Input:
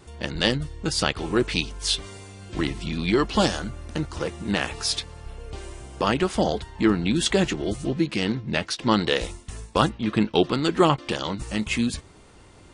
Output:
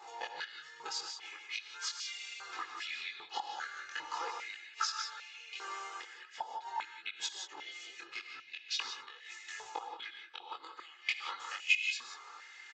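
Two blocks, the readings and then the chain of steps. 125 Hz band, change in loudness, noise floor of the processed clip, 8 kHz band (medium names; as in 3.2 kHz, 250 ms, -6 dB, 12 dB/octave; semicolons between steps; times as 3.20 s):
under -40 dB, -15.0 dB, -56 dBFS, -11.5 dB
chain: inverted gate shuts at -13 dBFS, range -30 dB; peak limiter -17.5 dBFS, peak gain reduction 8 dB; resampled via 16 kHz; compression 4:1, threshold -34 dBFS, peak gain reduction 10 dB; chorus voices 2, 0.43 Hz, delay 22 ms, depth 3.7 ms; comb 2.4 ms, depth 75%; gated-style reverb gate 200 ms rising, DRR 4.5 dB; step-sequenced high-pass 2.5 Hz 830–2500 Hz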